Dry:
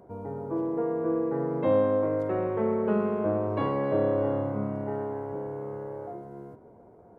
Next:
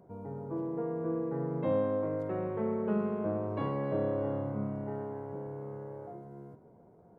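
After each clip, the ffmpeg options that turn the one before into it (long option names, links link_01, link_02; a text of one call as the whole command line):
ffmpeg -i in.wav -af "equalizer=frequency=160:width_type=o:width=0.67:gain=8.5,volume=-7dB" out.wav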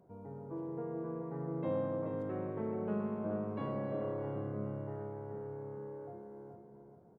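ffmpeg -i in.wav -filter_complex "[0:a]asplit=2[link_01][link_02];[link_02]adelay=430,lowpass=frequency=2000:poles=1,volume=-5dB,asplit=2[link_03][link_04];[link_04]adelay=430,lowpass=frequency=2000:poles=1,volume=0.31,asplit=2[link_05][link_06];[link_06]adelay=430,lowpass=frequency=2000:poles=1,volume=0.31,asplit=2[link_07][link_08];[link_08]adelay=430,lowpass=frequency=2000:poles=1,volume=0.31[link_09];[link_01][link_03][link_05][link_07][link_09]amix=inputs=5:normalize=0,volume=-6dB" out.wav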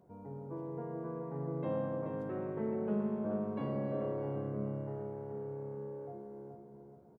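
ffmpeg -i in.wav -filter_complex "[0:a]asplit=2[link_01][link_02];[link_02]adelay=14,volume=-7dB[link_03];[link_01][link_03]amix=inputs=2:normalize=0" out.wav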